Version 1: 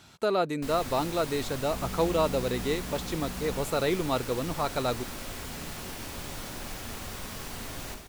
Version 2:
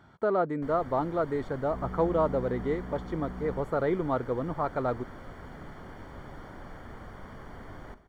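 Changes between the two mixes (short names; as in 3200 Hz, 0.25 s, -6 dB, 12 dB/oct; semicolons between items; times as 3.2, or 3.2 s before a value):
first sound: send -11.0 dB; master: add polynomial smoothing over 41 samples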